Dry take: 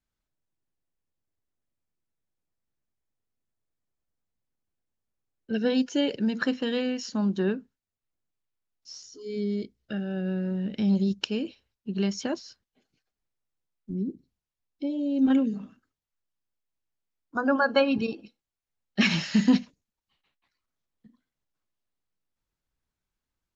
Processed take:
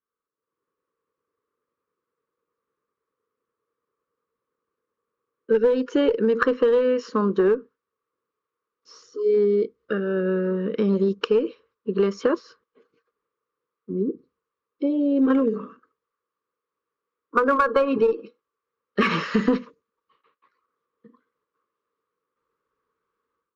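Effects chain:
pair of resonant band-passes 730 Hz, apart 1.3 octaves
automatic gain control gain up to 13.5 dB
in parallel at −5 dB: asymmetric clip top −22.5 dBFS
on the sum: downward compressor 12 to 1, threshold −21 dBFS, peak gain reduction 11 dB
level +5.5 dB

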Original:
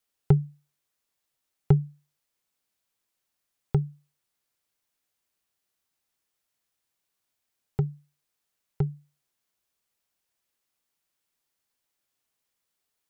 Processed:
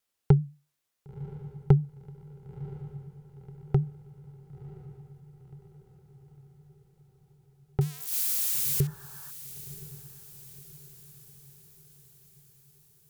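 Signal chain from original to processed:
0:07.81–0:08.87: spike at every zero crossing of −23.5 dBFS
0:08.79–0:09.28: healed spectral selection 550–1,800 Hz before
pitch vibrato 7.9 Hz 66 cents
on a send: feedback delay with all-pass diffusion 1,025 ms, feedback 53%, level −15 dB

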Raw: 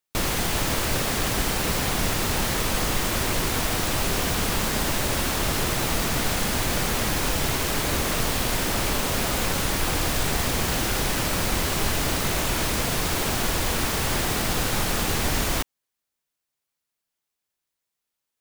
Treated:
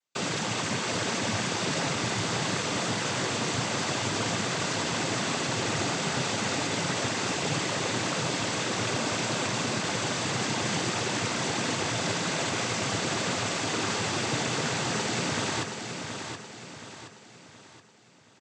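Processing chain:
in parallel at +2.5 dB: brickwall limiter −21.5 dBFS, peak gain reduction 10.5 dB
on the sum: cochlear-implant simulation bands 16
repeating echo 723 ms, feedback 43%, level −7 dB
level −7 dB

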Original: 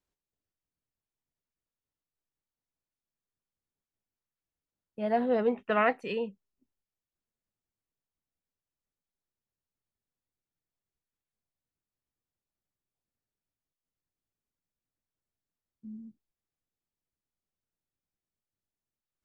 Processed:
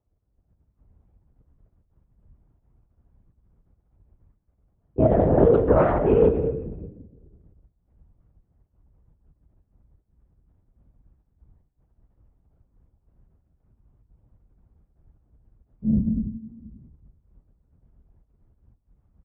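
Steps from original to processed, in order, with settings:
comb filter 4.8 ms, depth 75%
downward compressor 3 to 1, threshold −28 dBFS, peak gain reduction 9 dB
low-pass filter 1,100 Hz 12 dB per octave
spectral tilt −3.5 dB per octave
far-end echo of a speakerphone 80 ms, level −13 dB
rectangular room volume 600 cubic metres, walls mixed, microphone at 1.2 metres
automatic gain control gain up to 14 dB
parametric band 230 Hz −9 dB 0.73 octaves
linear-prediction vocoder at 8 kHz whisper
high-pass filter 42 Hz
saturating transformer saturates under 190 Hz

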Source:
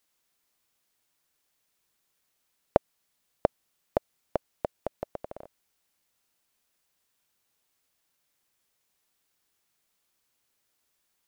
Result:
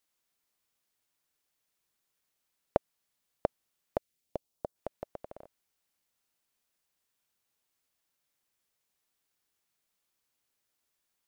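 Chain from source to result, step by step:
0:03.97–0:04.75: parametric band 780 Hz → 2,600 Hz −13.5 dB 1.1 octaves
level −5.5 dB

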